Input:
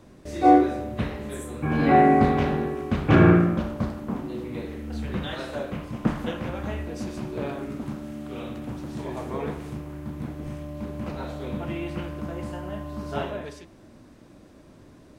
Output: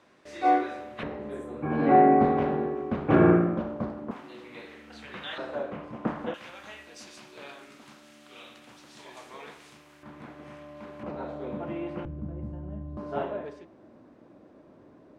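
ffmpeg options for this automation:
ffmpeg -i in.wav -af "asetnsamples=nb_out_samples=441:pad=0,asendcmd='1.03 bandpass f 540;4.11 bandpass f 2300;5.38 bandpass f 740;6.34 bandpass f 4300;10.03 bandpass f 1500;11.03 bandpass f 580;12.05 bandpass f 100;12.97 bandpass f 560',bandpass=frequency=1900:width_type=q:width=0.63:csg=0" out.wav

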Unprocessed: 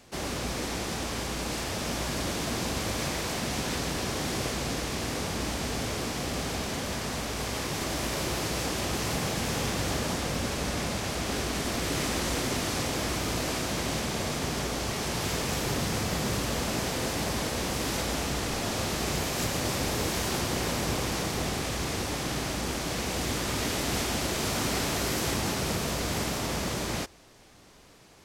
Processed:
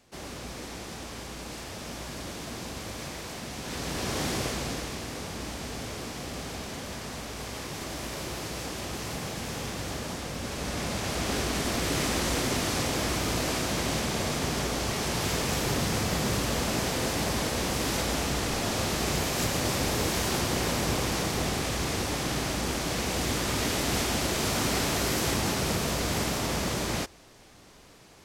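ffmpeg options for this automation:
ffmpeg -i in.wav -af "volume=8dB,afade=type=in:start_time=3.6:duration=0.62:silence=0.375837,afade=type=out:start_time=4.22:duration=0.83:silence=0.473151,afade=type=in:start_time=10.37:duration=0.86:silence=0.473151" out.wav

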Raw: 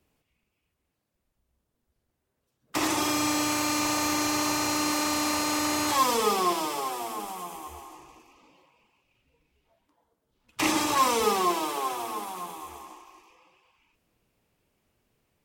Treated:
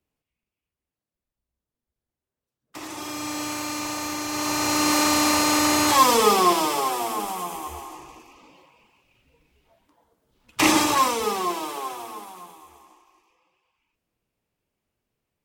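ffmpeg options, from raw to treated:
ffmpeg -i in.wav -af "volume=7dB,afade=type=in:start_time=2.85:duration=0.59:silence=0.421697,afade=type=in:start_time=4.27:duration=0.7:silence=0.316228,afade=type=out:start_time=10.75:duration=0.41:silence=0.398107,afade=type=out:start_time=11.74:duration=0.91:silence=0.446684" out.wav

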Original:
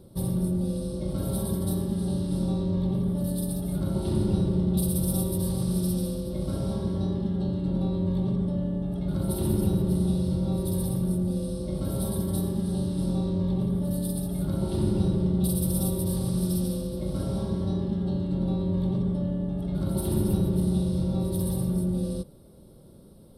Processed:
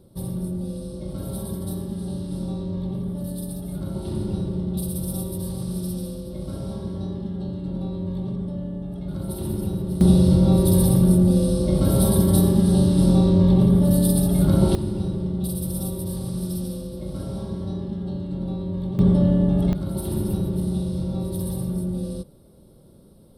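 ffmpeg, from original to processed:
ffmpeg -i in.wav -af "asetnsamples=nb_out_samples=441:pad=0,asendcmd='10.01 volume volume 10.5dB;14.75 volume volume -1.5dB;18.99 volume volume 10.5dB;19.73 volume volume 0dB',volume=-2dB" out.wav

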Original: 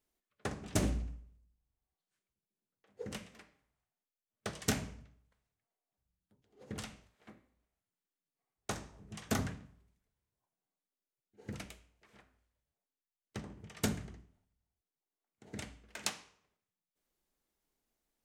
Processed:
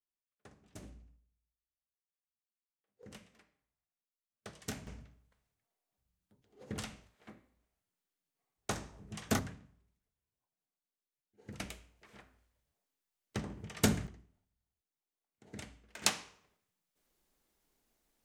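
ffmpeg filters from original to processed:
ffmpeg -i in.wav -af "asetnsamples=nb_out_samples=441:pad=0,asendcmd='3.03 volume volume -9dB;4.87 volume volume 2dB;9.39 volume volume -5dB;11.6 volume volume 5dB;14.07 volume volume -3dB;16.02 volume volume 6.5dB',volume=-19.5dB" out.wav

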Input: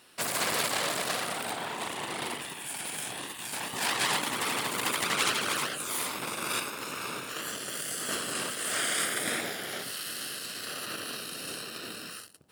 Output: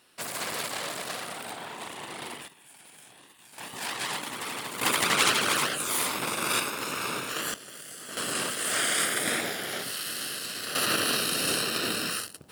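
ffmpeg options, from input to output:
ffmpeg -i in.wav -af "asetnsamples=nb_out_samples=441:pad=0,asendcmd='2.48 volume volume -15.5dB;3.58 volume volume -4.5dB;4.81 volume volume 4.5dB;7.54 volume volume -8dB;8.17 volume volume 3dB;10.75 volume volume 11dB',volume=-4dB" out.wav

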